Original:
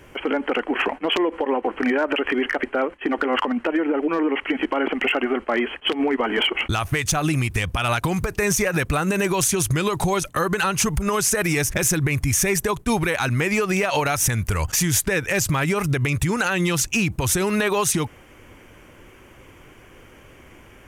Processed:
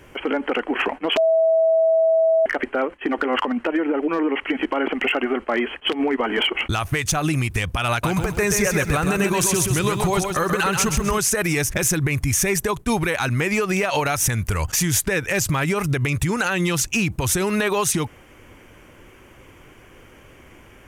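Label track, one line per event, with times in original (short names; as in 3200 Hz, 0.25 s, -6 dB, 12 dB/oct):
1.170000	2.460000	bleep 650 Hz -13.5 dBFS
7.900000	11.180000	lo-fi delay 0.131 s, feedback 35%, word length 8-bit, level -5 dB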